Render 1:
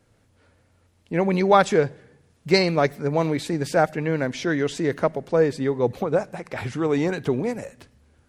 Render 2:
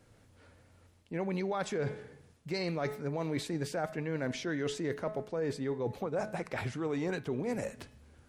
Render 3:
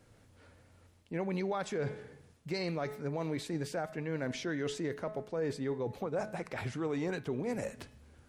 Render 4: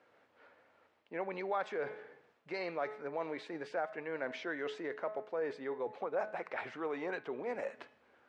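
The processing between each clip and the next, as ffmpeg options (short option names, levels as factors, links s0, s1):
-af "bandreject=f=213.7:t=h:w=4,bandreject=f=427.4:t=h:w=4,bandreject=f=641.1:t=h:w=4,bandreject=f=854.8:t=h:w=4,bandreject=f=1068.5:t=h:w=4,bandreject=f=1282.2:t=h:w=4,bandreject=f=1495.9:t=h:w=4,bandreject=f=1709.6:t=h:w=4,bandreject=f=1923.3:t=h:w=4,bandreject=f=2137:t=h:w=4,bandreject=f=2350.7:t=h:w=4,bandreject=f=2564.4:t=h:w=4,bandreject=f=2778.1:t=h:w=4,bandreject=f=2991.8:t=h:w=4,bandreject=f=3205.5:t=h:w=4,bandreject=f=3419.2:t=h:w=4,bandreject=f=3632.9:t=h:w=4,bandreject=f=3846.6:t=h:w=4,bandreject=f=4060.3:t=h:w=4,bandreject=f=4274:t=h:w=4,alimiter=limit=0.211:level=0:latency=1:release=90,areverse,acompressor=threshold=0.0251:ratio=5,areverse"
-af "alimiter=level_in=1.19:limit=0.0631:level=0:latency=1:release=226,volume=0.841"
-af "highpass=530,lowpass=2300,volume=1.33"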